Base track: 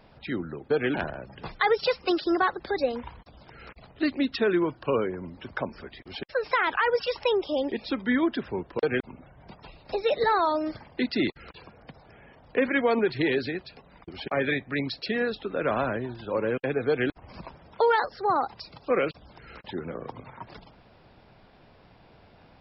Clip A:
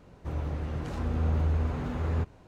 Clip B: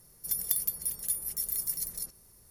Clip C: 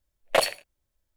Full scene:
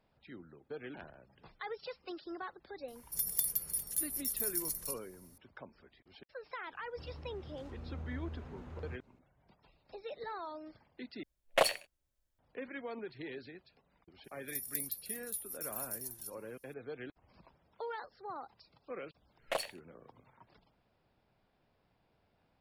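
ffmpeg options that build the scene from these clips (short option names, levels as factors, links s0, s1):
-filter_complex "[2:a]asplit=2[s0][s1];[3:a]asplit=2[s2][s3];[0:a]volume=0.106[s4];[s1]highshelf=f=3100:g=8.5[s5];[s4]asplit=2[s6][s7];[s6]atrim=end=11.234[s8];[s2]atrim=end=1.16,asetpts=PTS-STARTPTS,volume=0.501[s9];[s7]atrim=start=12.386[s10];[s0]atrim=end=2.5,asetpts=PTS-STARTPTS,volume=0.668,afade=t=in:d=0.004:c=hsin,afade=t=out:st=2.496:d=0.004:c=hsin,adelay=2880[s11];[1:a]atrim=end=2.47,asetpts=PTS-STARTPTS,volume=0.15,afade=t=in:d=0.004:c=hsin,afade=t=out:st=2.466:d=0.004:c=hsin,adelay=6720[s12];[s5]atrim=end=2.5,asetpts=PTS-STARTPTS,volume=0.133,afade=t=in:d=0.004:c=hsin,afade=t=out:st=2.496:d=0.004:c=hsin,adelay=14240[s13];[s3]atrim=end=1.16,asetpts=PTS-STARTPTS,volume=0.2,afade=t=in:d=0.004:c=hsin,afade=t=out:st=1.156:d=0.004:c=hsin,adelay=19170[s14];[s8][s9]acrossfade=d=0.004:c1=hsin:c2=hsin[s15];[s15][s10]acrossfade=d=0.004:c1=hsin:c2=hsin[s16];[s16][s11][s12][s13][s14]amix=inputs=5:normalize=0"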